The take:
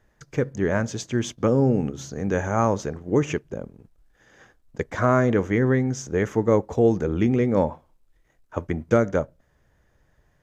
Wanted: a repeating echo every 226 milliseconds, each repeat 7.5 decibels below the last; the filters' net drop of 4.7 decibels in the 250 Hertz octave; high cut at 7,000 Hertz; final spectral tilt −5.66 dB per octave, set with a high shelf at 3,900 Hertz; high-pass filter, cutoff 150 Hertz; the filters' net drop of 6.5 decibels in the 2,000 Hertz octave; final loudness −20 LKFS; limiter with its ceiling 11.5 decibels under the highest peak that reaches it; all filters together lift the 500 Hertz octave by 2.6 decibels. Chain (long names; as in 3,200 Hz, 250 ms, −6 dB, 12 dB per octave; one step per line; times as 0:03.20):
high-pass filter 150 Hz
low-pass filter 7,000 Hz
parametric band 250 Hz −7 dB
parametric band 500 Hz +5.5 dB
parametric band 2,000 Hz −8.5 dB
high-shelf EQ 3,900 Hz −3 dB
brickwall limiter −17.5 dBFS
repeating echo 226 ms, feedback 42%, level −7.5 dB
level +8 dB